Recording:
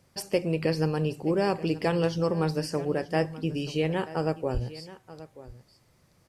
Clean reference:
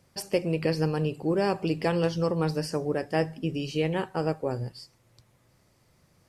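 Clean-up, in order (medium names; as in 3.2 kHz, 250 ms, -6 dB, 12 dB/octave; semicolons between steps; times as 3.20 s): 4.53–4.65 s: high-pass 140 Hz 24 dB/octave; inverse comb 931 ms -17 dB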